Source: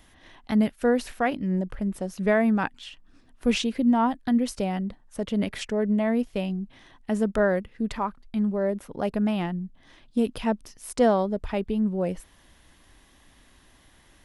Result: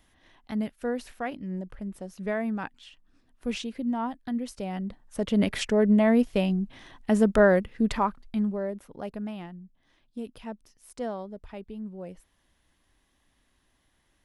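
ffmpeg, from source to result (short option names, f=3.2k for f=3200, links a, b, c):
-af "volume=3.5dB,afade=t=in:st=4.58:d=0.95:silence=0.266073,afade=t=out:st=7.95:d=0.72:silence=0.316228,afade=t=out:st=8.67:d=0.87:silence=0.473151"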